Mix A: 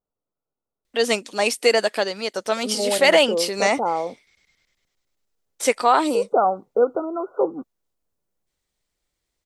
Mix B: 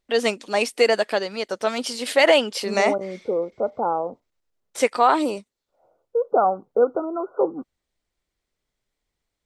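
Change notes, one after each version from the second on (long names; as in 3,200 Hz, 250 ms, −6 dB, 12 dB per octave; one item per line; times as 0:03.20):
first voice: entry −0.85 s
master: add high-shelf EQ 4,800 Hz −8 dB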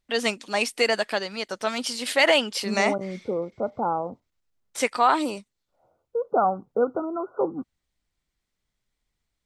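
second voice: add low-shelf EQ 220 Hz +9 dB
master: add parametric band 470 Hz −6.5 dB 1.4 octaves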